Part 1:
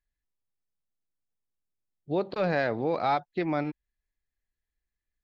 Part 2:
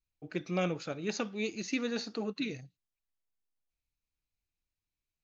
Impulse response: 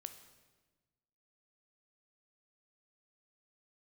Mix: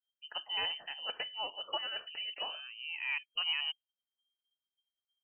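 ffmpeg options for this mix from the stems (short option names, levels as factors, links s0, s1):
-filter_complex "[0:a]alimiter=level_in=1.41:limit=0.0631:level=0:latency=1:release=314,volume=0.708,volume=1.33[s0];[1:a]equalizer=f=460:w=0.85:g=-13,volume=1.19,asplit=2[s1][s2];[s2]apad=whole_len=230761[s3];[s0][s3]sidechaincompress=threshold=0.00141:ratio=6:attack=41:release=451[s4];[s4][s1]amix=inputs=2:normalize=0,afftdn=nr=20:nf=-57,lowpass=f=2700:t=q:w=0.5098,lowpass=f=2700:t=q:w=0.6013,lowpass=f=2700:t=q:w=0.9,lowpass=f=2700:t=q:w=2.563,afreqshift=-3200"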